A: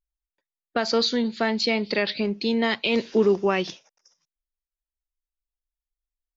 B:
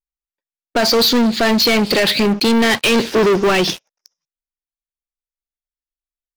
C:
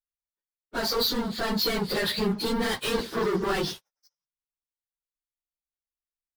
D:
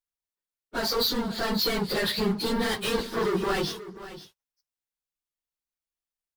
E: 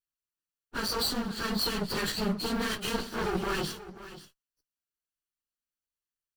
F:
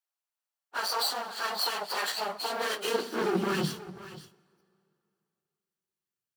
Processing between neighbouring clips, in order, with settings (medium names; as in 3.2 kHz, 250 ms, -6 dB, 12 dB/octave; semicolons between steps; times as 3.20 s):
waveshaping leveller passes 5
phase randomisation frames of 50 ms; fifteen-band graphic EQ 250 Hz -7 dB, 630 Hz -6 dB, 2.5 kHz -9 dB, 6.3 kHz -6 dB; trim -8.5 dB
delay 535 ms -15 dB
comb filter that takes the minimum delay 0.68 ms; trim -2.5 dB
high-pass sweep 730 Hz -> 110 Hz, 2.44–4.00 s; on a send at -23 dB: reverberation RT60 2.7 s, pre-delay 19 ms